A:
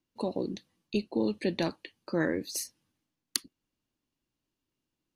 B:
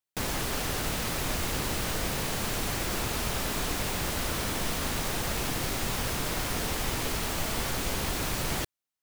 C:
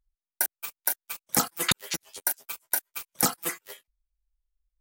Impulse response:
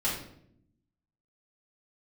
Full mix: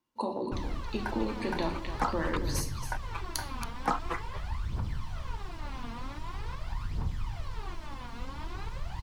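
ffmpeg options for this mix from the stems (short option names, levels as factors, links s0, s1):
-filter_complex "[0:a]acompressor=threshold=0.0316:ratio=6,volume=0.631,asplit=4[s0][s1][s2][s3];[s1]volume=0.376[s4];[s2]volume=0.422[s5];[1:a]firequalizer=gain_entry='entry(100,0);entry(240,-12);entry(530,-19);entry(4200,-8);entry(13000,-22)':delay=0.05:min_phase=1,aphaser=in_gain=1:out_gain=1:delay=4.4:decay=0.78:speed=0.45:type=triangular,adelay=350,volume=0.891,asplit=2[s6][s7];[s7]volume=0.0891[s8];[2:a]adelay=650,volume=0.944[s9];[s3]apad=whole_len=240754[s10];[s9][s10]sidechaincompress=threshold=0.0141:ratio=8:attack=16:release=897[s11];[s6][s11]amix=inputs=2:normalize=0,lowpass=2400,acompressor=threshold=0.0398:ratio=6,volume=1[s12];[3:a]atrim=start_sample=2205[s13];[s4][s8]amix=inputs=2:normalize=0[s14];[s14][s13]afir=irnorm=-1:irlink=0[s15];[s5]aecho=0:1:276:1[s16];[s0][s12][s15][s16]amix=inputs=4:normalize=0,highpass=f=40:p=1,equalizer=f=1000:w=1.9:g=12.5"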